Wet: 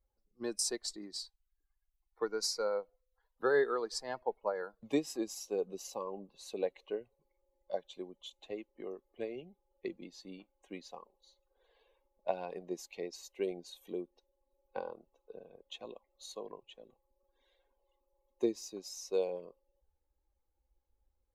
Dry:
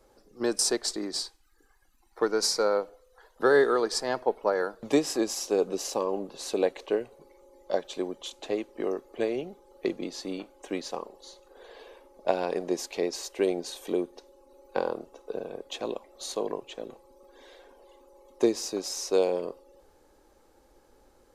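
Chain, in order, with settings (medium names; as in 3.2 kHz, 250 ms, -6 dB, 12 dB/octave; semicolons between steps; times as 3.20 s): expander on every frequency bin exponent 1.5; trim -6.5 dB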